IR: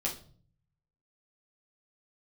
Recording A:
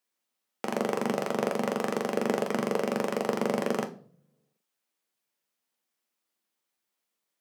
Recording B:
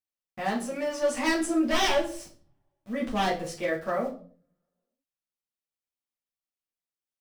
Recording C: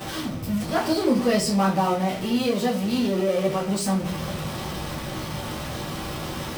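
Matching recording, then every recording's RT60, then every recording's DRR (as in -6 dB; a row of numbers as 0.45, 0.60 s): B; 0.50, 0.45, 0.45 s; 5.5, -4.5, -10.5 dB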